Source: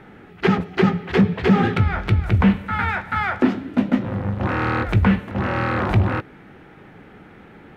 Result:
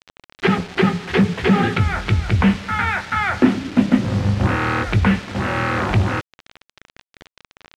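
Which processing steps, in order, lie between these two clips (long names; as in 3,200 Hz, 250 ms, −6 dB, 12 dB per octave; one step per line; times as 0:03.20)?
0:03.29–0:04.56: low-shelf EQ 220 Hz +8 dB
bit reduction 6 bits
low-pass filter 3,900 Hz 12 dB per octave
high-shelf EQ 2,500 Hz +9.5 dB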